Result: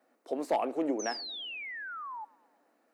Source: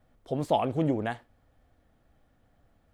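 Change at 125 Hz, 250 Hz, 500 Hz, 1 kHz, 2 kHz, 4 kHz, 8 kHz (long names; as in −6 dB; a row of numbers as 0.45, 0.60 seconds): −28.0 dB, −4.5 dB, −2.5 dB, −2.5 dB, +4.5 dB, +7.0 dB, can't be measured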